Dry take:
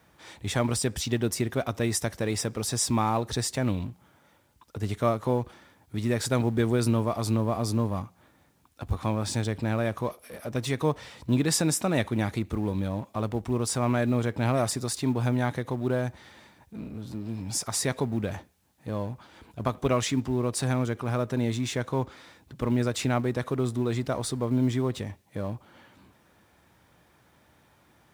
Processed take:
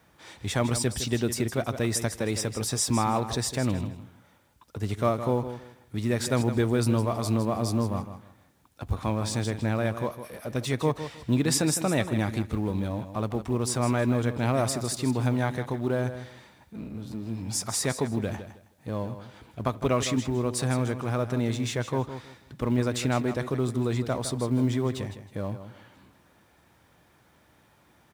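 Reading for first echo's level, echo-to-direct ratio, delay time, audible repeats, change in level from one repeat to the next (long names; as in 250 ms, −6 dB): −11.0 dB, −11.0 dB, 159 ms, 2, −13.0 dB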